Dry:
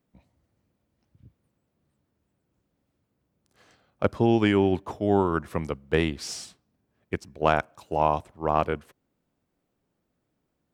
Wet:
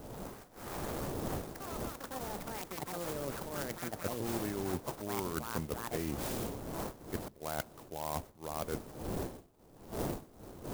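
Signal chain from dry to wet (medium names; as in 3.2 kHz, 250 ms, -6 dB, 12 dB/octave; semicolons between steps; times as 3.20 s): knee-point frequency compression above 1.9 kHz 1.5:1; wind noise 510 Hz -36 dBFS; reverse; compression 16:1, threshold -30 dBFS, peak gain reduction 16.5 dB; reverse; ever faster or slower copies 118 ms, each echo +7 st, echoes 3; sampling jitter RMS 0.086 ms; trim -3 dB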